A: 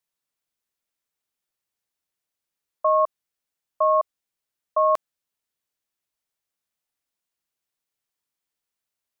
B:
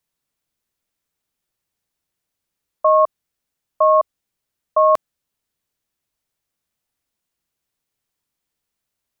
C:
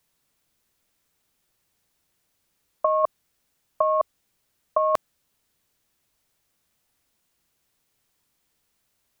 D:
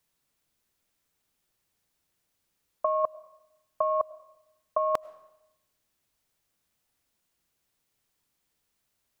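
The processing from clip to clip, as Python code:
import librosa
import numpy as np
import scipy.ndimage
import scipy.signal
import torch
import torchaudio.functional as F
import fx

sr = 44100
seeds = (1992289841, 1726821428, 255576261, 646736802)

y1 = fx.low_shelf(x, sr, hz=300.0, db=8.5)
y1 = y1 * 10.0 ** (4.5 / 20.0)
y2 = fx.over_compress(y1, sr, threshold_db=-18.0, ratio=-0.5)
y3 = fx.rev_freeverb(y2, sr, rt60_s=0.93, hf_ratio=0.85, predelay_ms=60, drr_db=20.0)
y3 = y3 * 10.0 ** (-5.0 / 20.0)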